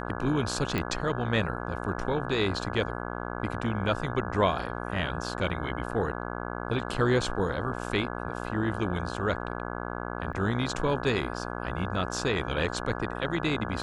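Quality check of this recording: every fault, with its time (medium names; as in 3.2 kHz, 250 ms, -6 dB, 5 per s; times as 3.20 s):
buzz 60 Hz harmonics 28 -35 dBFS
0.78 s: pop -16 dBFS
10.33 s: dropout 4.5 ms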